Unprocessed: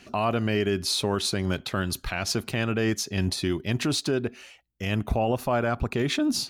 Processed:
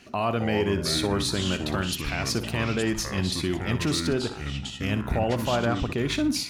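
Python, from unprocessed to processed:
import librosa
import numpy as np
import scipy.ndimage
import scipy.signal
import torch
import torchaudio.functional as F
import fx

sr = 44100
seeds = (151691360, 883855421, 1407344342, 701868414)

y = fx.room_flutter(x, sr, wall_m=10.3, rt60_s=0.31)
y = fx.echo_pitch(y, sr, ms=219, semitones=-5, count=2, db_per_echo=-6.0)
y = y * librosa.db_to_amplitude(-1.0)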